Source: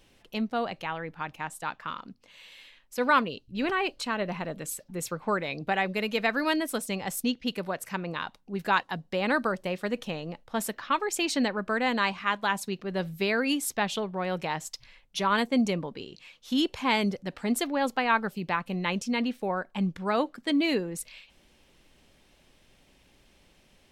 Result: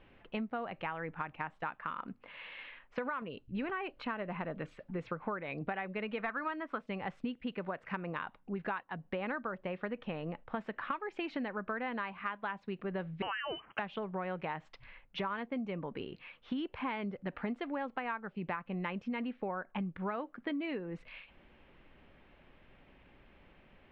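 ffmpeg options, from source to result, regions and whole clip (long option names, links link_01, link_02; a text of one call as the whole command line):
ffmpeg -i in.wav -filter_complex "[0:a]asettb=1/sr,asplit=3[link_01][link_02][link_03];[link_01]atrim=end=1.984[link_04];[link_02]atrim=start=1.98:end=3.22,asetpts=PTS-STARTPTS,afade=type=in:duration=0.004:curve=qsin,afade=type=out:start_time=1.236:duration=0.004:curve=qsin,equalizer=frequency=1200:width=0.3:gain=5.5,acompressor=threshold=-25dB:ratio=3:attack=3.2:release=140:knee=1:detection=peak[link_05];[link_03]atrim=start=3.216[link_06];[link_04][link_05]acrossfade=duration=0.004:curve1=hsin:curve2=qsin[link_07];[link_07][link_06]acrossfade=duration=0.004:curve1=qsin:curve2=hsin,asettb=1/sr,asplit=3[link_08][link_09][link_10];[link_08]atrim=end=6.194[link_11];[link_09]atrim=start=6.19:end=6.81,asetpts=PTS-STARTPTS,afade=type=in:duration=0.004:curve=qsin,afade=type=out:start_time=0.616:duration=0.004:curve=qsin,equalizer=frequency=1200:width_type=o:width=0.91:gain=10.5,asoftclip=type=hard:threshold=-15dB[link_12];[link_10]atrim=start=6.806[link_13];[link_11][link_12]acrossfade=duration=0.004:curve1=hsin:curve2=qsin[link_14];[link_14][link_13]acrossfade=duration=0.004:curve1=qsin:curve2=hsin,asettb=1/sr,asplit=3[link_15][link_16][link_17];[link_15]atrim=end=13.224[link_18];[link_16]atrim=start=13.22:end=13.79,asetpts=PTS-STARTPTS,afade=type=in:duration=0.004:curve=qsin,afade=type=out:start_time=0.566:duration=0.004:curve=qsin,aemphasis=mode=production:type=riaa,lowpass=frequency=2800:width_type=q:width=0.5098,lowpass=frequency=2800:width_type=q:width=0.6013,lowpass=frequency=2800:width_type=q:width=0.9,lowpass=frequency=2800:width_type=q:width=2.563,afreqshift=-3300[link_19];[link_17]atrim=start=13.786[link_20];[link_18][link_19]acrossfade=duration=0.004:curve1=hsin:curve2=qsin[link_21];[link_21][link_20]acrossfade=duration=0.004:curve1=qsin:curve2=hsin,lowpass=frequency=2600:width=0.5412,lowpass=frequency=2600:width=1.3066,equalizer=frequency=1300:width=1.5:gain=3,acompressor=threshold=-35dB:ratio=12,volume=1dB" out.wav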